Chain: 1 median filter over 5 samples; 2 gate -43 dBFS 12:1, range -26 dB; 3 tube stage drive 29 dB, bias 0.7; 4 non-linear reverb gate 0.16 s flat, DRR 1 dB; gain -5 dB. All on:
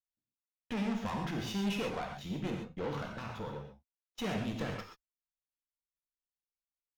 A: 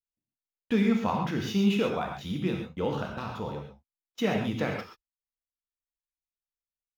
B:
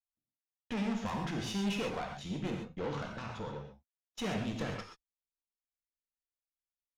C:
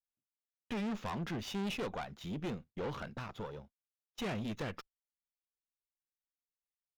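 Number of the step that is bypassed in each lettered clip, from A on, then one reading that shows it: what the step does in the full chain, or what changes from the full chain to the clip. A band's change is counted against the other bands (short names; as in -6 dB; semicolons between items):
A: 3, crest factor change +2.0 dB; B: 1, 8 kHz band +2.5 dB; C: 4, momentary loudness spread change -2 LU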